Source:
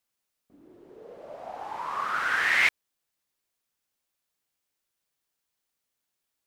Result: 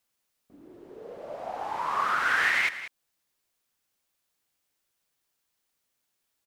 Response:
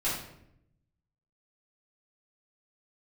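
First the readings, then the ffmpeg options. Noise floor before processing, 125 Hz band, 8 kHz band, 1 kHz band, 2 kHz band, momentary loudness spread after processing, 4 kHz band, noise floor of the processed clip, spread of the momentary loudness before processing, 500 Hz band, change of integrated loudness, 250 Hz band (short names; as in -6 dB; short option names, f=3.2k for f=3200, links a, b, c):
-83 dBFS, n/a, -1.0 dB, +2.5 dB, -0.5 dB, 20 LU, -1.5 dB, -79 dBFS, 20 LU, +3.0 dB, -1.0 dB, +2.5 dB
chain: -af "alimiter=limit=-18.5dB:level=0:latency=1:release=339,aecho=1:1:189:0.224,volume=3.5dB"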